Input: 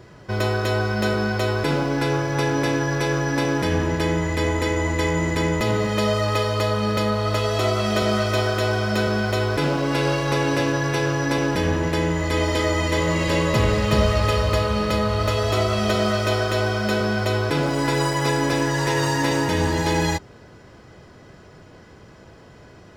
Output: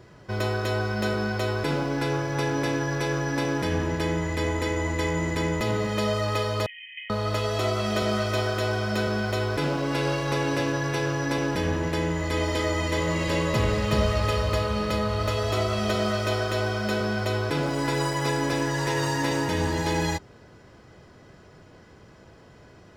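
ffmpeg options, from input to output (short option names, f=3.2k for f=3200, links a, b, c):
-filter_complex "[0:a]asettb=1/sr,asplit=3[a][b][c];[a]atrim=end=6.664[d];[b]atrim=start=6.66:end=7.1,asetpts=PTS-STARTPTS,afade=t=in:d=0.004:c=qsin,afade=t=out:st=0.436:d=0.004:c=qsin,asuperpass=centerf=2400:order=20:qfactor=1.8[e];[c]atrim=start=7.096[f];[d][e]acrossfade=d=0.004:c1=hsin:c2=qsin[g];[g][f]acrossfade=d=0.004:c1=qsin:c2=hsin,volume=-4.5dB"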